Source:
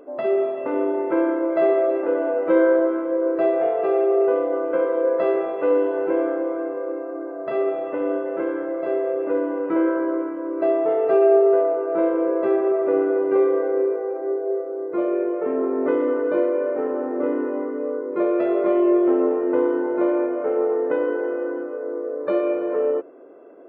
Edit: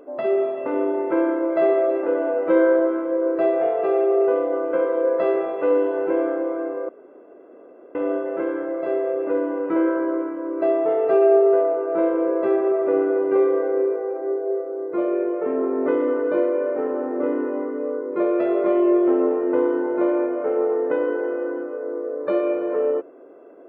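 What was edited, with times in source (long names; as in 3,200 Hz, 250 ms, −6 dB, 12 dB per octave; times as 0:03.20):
0:06.89–0:07.95: fill with room tone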